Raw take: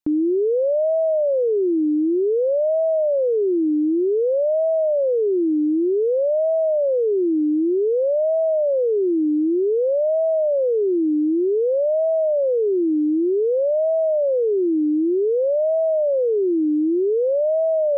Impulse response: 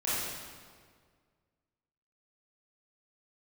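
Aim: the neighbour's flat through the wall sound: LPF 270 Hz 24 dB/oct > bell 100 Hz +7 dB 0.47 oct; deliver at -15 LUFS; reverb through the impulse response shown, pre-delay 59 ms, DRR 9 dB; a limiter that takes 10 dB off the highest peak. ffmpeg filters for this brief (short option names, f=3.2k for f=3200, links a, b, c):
-filter_complex "[0:a]alimiter=level_in=2dB:limit=-24dB:level=0:latency=1,volume=-2dB,asplit=2[a][b];[1:a]atrim=start_sample=2205,adelay=59[c];[b][c]afir=irnorm=-1:irlink=0,volume=-17.5dB[d];[a][d]amix=inputs=2:normalize=0,lowpass=f=270:w=0.5412,lowpass=f=270:w=1.3066,equalizer=f=100:t=o:w=0.47:g=7,volume=24dB"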